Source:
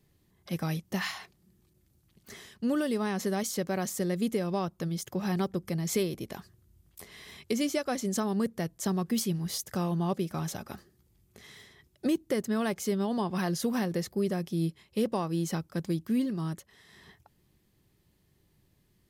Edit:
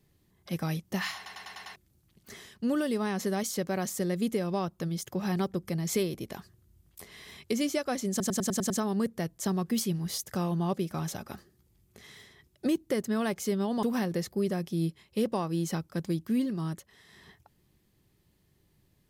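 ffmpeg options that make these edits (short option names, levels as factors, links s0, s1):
-filter_complex "[0:a]asplit=14[s0][s1][s2][s3][s4][s5][s6][s7][s8][s9][s10][s11][s12][s13];[s0]atrim=end=1.262[s14];[s1]atrim=start=1.158:end=1.262[s15];[s2]atrim=start=1.158:end=1.262[s16];[s3]atrim=start=1.158:end=1.262[s17];[s4]atrim=start=1.158:end=1.262[s18];[s5]atrim=start=1.158:end=1.262[s19];[s6]atrim=start=1.758:end=8.202[s20];[s7]atrim=start=8.098:end=8.202[s21];[s8]atrim=start=8.098:end=8.202[s22];[s9]atrim=start=8.098:end=8.202[s23];[s10]atrim=start=8.098:end=8.202[s24];[s11]atrim=start=8.098:end=8.202[s25];[s12]atrim=start=8.098:end=13.232[s26];[s13]atrim=start=13.628[s27];[s14][s15]acrossfade=d=0.004:c1=hsin:c2=hsin[s28];[s28][s16]acrossfade=d=0.004:c1=hsin:c2=hsin[s29];[s29][s17]acrossfade=d=0.004:c1=hsin:c2=hsin[s30];[s30][s18]acrossfade=d=0.004:c1=hsin:c2=hsin[s31];[s31][s19]acrossfade=d=0.004:c1=hsin:c2=hsin[s32];[s32][s20]acrossfade=d=0.004:c1=hsin:c2=hsin[s33];[s33][s21]acrossfade=d=0.004:c1=hsin:c2=hsin[s34];[s34][s22]acrossfade=d=0.004:c1=hsin:c2=hsin[s35];[s35][s23]acrossfade=d=0.004:c1=hsin:c2=hsin[s36];[s36][s24]acrossfade=d=0.004:c1=hsin:c2=hsin[s37];[s37][s25]acrossfade=d=0.004:c1=hsin:c2=hsin[s38];[s38][s26]acrossfade=d=0.004:c1=hsin:c2=hsin[s39];[s39][s27]acrossfade=d=0.004:c1=hsin:c2=hsin"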